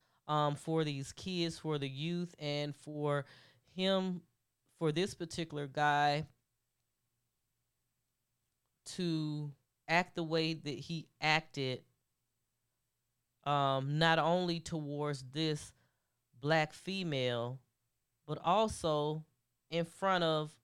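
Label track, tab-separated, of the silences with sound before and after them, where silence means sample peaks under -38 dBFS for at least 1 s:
6.220000	8.880000	silence
11.760000	13.460000	silence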